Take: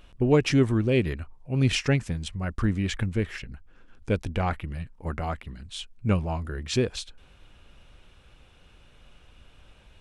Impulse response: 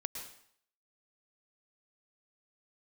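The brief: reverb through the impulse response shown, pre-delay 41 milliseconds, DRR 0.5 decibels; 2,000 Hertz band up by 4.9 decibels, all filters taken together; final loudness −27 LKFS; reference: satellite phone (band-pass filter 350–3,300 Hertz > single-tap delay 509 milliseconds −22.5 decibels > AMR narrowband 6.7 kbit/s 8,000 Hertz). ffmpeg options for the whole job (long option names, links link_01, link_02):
-filter_complex "[0:a]equalizer=frequency=2000:width_type=o:gain=7,asplit=2[link_01][link_02];[1:a]atrim=start_sample=2205,adelay=41[link_03];[link_02][link_03]afir=irnorm=-1:irlink=0,volume=-0.5dB[link_04];[link_01][link_04]amix=inputs=2:normalize=0,highpass=350,lowpass=3300,aecho=1:1:509:0.075,volume=2.5dB" -ar 8000 -c:a libopencore_amrnb -b:a 6700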